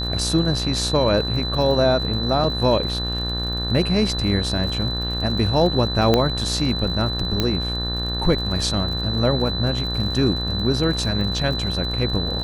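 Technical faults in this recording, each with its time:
buzz 60 Hz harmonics 31 -27 dBFS
crackle 61 per s -30 dBFS
whine 4 kHz -26 dBFS
2.44 s: dropout 3.9 ms
6.14 s: pop -4 dBFS
7.40 s: pop -6 dBFS

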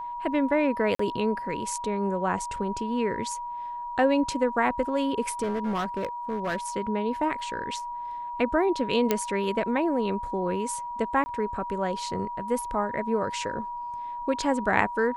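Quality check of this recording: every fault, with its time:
whine 960 Hz -32 dBFS
0.95–0.99 s: dropout 44 ms
5.42–6.56 s: clipped -24.5 dBFS
9.11 s: pop -8 dBFS
11.24–11.26 s: dropout 20 ms

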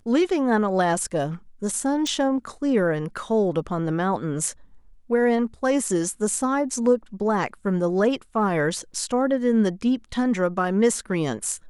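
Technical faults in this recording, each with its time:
2.07 s: pop

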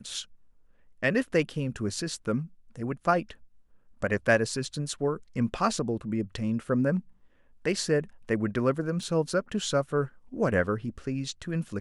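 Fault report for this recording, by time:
9.03 s: dropout 2.1 ms

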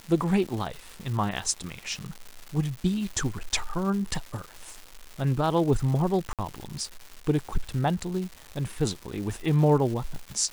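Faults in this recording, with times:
crackle 380 per s -34 dBFS
6.33–6.39 s: dropout 57 ms

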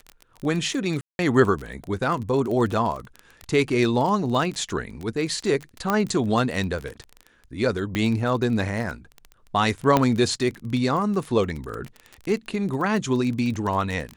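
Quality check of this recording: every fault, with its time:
crackle 24 per s -28 dBFS
1.01–1.19 s: dropout 181 ms
5.90 s: pop -9 dBFS
7.95 s: pop -12 dBFS
9.97 s: pop -5 dBFS

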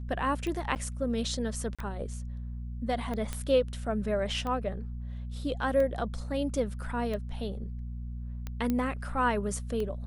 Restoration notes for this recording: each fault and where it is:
hum 60 Hz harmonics 4 -37 dBFS
tick 45 rpm -23 dBFS
0.75–0.76 s: dropout 9.1 ms
1.75–1.79 s: dropout 36 ms
3.33 s: pop -19 dBFS
8.70 s: pop -17 dBFS

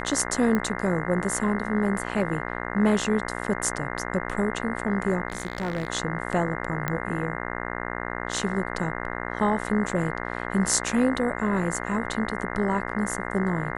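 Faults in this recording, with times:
buzz 60 Hz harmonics 35 -32 dBFS
0.55 s: pop -13 dBFS
5.28–5.88 s: clipped -22 dBFS
6.88 s: pop -12 dBFS

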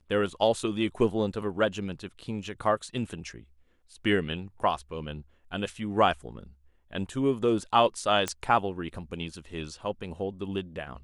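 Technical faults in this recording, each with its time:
8.28 s: pop -13 dBFS

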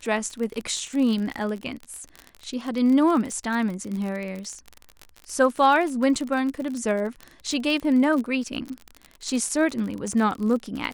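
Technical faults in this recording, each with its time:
crackle 35 per s -28 dBFS

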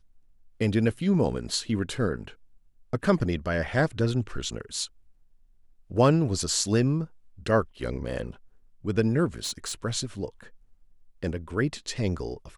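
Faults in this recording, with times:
9.38–9.73 s: clipped -27 dBFS

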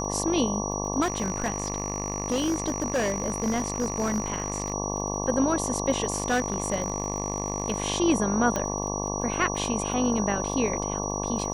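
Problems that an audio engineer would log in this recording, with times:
buzz 50 Hz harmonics 23 -31 dBFS
crackle 30 per s -36 dBFS
whine 5.8 kHz -33 dBFS
1.01–4.74 s: clipped -21.5 dBFS
6.10–7.82 s: clipped -19.5 dBFS
8.56 s: pop -13 dBFS

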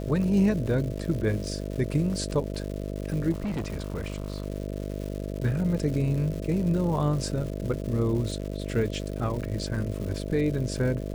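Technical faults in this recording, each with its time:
buzz 50 Hz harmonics 13 -33 dBFS
crackle 280 per s -35 dBFS
3.31–4.46 s: clipped -26.5 dBFS

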